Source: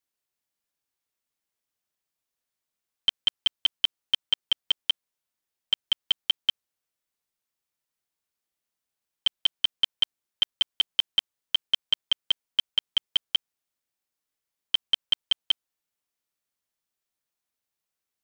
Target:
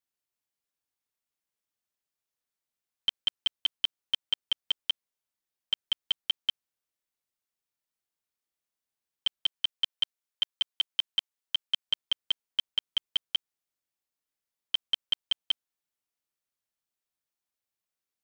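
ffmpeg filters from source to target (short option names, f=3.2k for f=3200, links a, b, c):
-filter_complex "[0:a]asettb=1/sr,asplit=3[a][b][c];[a]atrim=end=9.464[d];[b]atrim=start=9.46:end=11.88,asetpts=PTS-STARTPTS,afade=t=in:d=0.004:c=qsin,afade=t=out:st=2.416:d=0.004:c=qsin,lowshelf=f=330:g=-11.5[e];[c]atrim=start=11.876[f];[d][e]acrossfade=d=0.004:c1=hsin:c2=qsin[g];[g][f]acrossfade=d=0.004:c1=qsin:c2=hsin,volume=-4.5dB"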